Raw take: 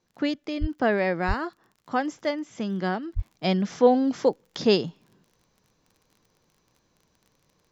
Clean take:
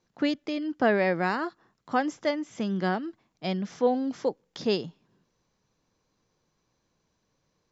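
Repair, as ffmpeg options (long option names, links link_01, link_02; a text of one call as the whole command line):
ffmpeg -i in.wav -filter_complex "[0:a]adeclick=threshold=4,asplit=3[link_01][link_02][link_03];[link_01]afade=type=out:start_time=0.6:duration=0.02[link_04];[link_02]highpass=frequency=140:width=0.5412,highpass=frequency=140:width=1.3066,afade=type=in:start_time=0.6:duration=0.02,afade=type=out:start_time=0.72:duration=0.02[link_05];[link_03]afade=type=in:start_time=0.72:duration=0.02[link_06];[link_04][link_05][link_06]amix=inputs=3:normalize=0,asplit=3[link_07][link_08][link_09];[link_07]afade=type=out:start_time=1.27:duration=0.02[link_10];[link_08]highpass=frequency=140:width=0.5412,highpass=frequency=140:width=1.3066,afade=type=in:start_time=1.27:duration=0.02,afade=type=out:start_time=1.39:duration=0.02[link_11];[link_09]afade=type=in:start_time=1.39:duration=0.02[link_12];[link_10][link_11][link_12]amix=inputs=3:normalize=0,asplit=3[link_13][link_14][link_15];[link_13]afade=type=out:start_time=3.15:duration=0.02[link_16];[link_14]highpass=frequency=140:width=0.5412,highpass=frequency=140:width=1.3066,afade=type=in:start_time=3.15:duration=0.02,afade=type=out:start_time=3.27:duration=0.02[link_17];[link_15]afade=type=in:start_time=3.27:duration=0.02[link_18];[link_16][link_17][link_18]amix=inputs=3:normalize=0,asetnsamples=nb_out_samples=441:pad=0,asendcmd='3.18 volume volume -6dB',volume=0dB" out.wav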